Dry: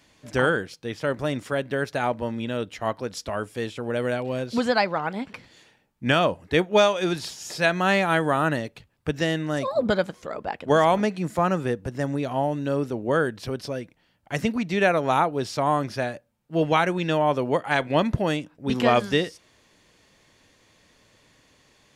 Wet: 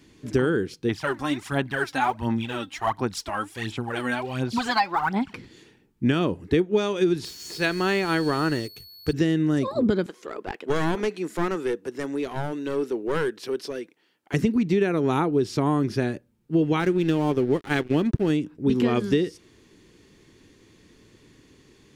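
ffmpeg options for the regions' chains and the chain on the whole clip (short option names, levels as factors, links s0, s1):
-filter_complex "[0:a]asettb=1/sr,asplit=3[s0][s1][s2];[s0]atrim=end=0.894[s3];[s1]atrim=start=0.89:end=5.34,asetpts=PTS-STARTPTS,afade=t=in:d=0.004:c=qsin,afade=t=out:st=4.446:d=0.004:c=qsin,lowshelf=f=590:t=q:w=3:g=-9,aphaser=in_gain=1:out_gain=1:delay=3.8:decay=0.67:speed=1.4:type=sinusoidal[s4];[s2]atrim=start=5.336[s5];[s3][s4]acrossfade=d=0.004:c1=hsin:c2=qsin[s6];[s6][s5]acrossfade=d=0.004:c1=qsin:c2=hsin,asettb=1/sr,asplit=3[s7][s8][s9];[s7]atrim=end=7.254[s10];[s8]atrim=start=7.25:end=9.13,asetpts=PTS-STARTPTS,afade=t=in:d=0.004:c=qsin,afade=t=out:st=1.876:d=0.004:c=qsin,equalizer=f=210:w=1:g=-8,aeval=exprs='val(0)+0.0178*sin(2*PI*4400*n/s)':c=same,aeval=exprs='sgn(val(0))*max(abs(val(0))-0.01,0)':c=same[s11];[s9]atrim=start=9.126[s12];[s10][s11]acrossfade=d=0.004:c1=hsin:c2=qsin[s13];[s13][s12]acrossfade=d=0.004:c1=qsin:c2=hsin,asettb=1/sr,asplit=3[s14][s15][s16];[s14]atrim=end=10.064[s17];[s15]atrim=start=10.06:end=14.34,asetpts=PTS-STARTPTS,afade=t=in:d=0.004:c=qsin,afade=t=out:st=4.276:d=0.004:c=qsin,highpass=530,aeval=exprs='clip(val(0),-1,0.0355)':c=same[s18];[s16]atrim=start=14.336[s19];[s17][s18]acrossfade=d=0.004:c1=hsin:c2=qsin[s20];[s20][s19]acrossfade=d=0.004:c1=qsin:c2=hsin,asettb=1/sr,asplit=3[s21][s22][s23];[s21]atrim=end=16.804[s24];[s22]atrim=start=16.8:end=18.3,asetpts=PTS-STARTPTS,afade=t=in:d=0.004:c=qsin,afade=t=out:st=1.496:d=0.004:c=qsin,aeval=exprs='sgn(val(0))*max(abs(val(0))-0.0168,0)':c=same,bandreject=f=990:w=11[s25];[s23]atrim=start=18.296[s26];[s24][s25]acrossfade=d=0.004:c1=hsin:c2=qsin[s27];[s27][s26]acrossfade=d=0.004:c1=qsin:c2=hsin,lowshelf=f=480:t=q:w=3:g=7,acompressor=threshold=0.126:ratio=6"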